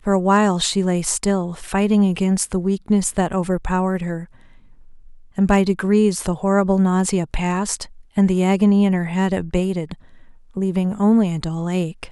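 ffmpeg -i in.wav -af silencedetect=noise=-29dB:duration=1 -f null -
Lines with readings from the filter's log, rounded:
silence_start: 4.24
silence_end: 5.38 | silence_duration: 1.14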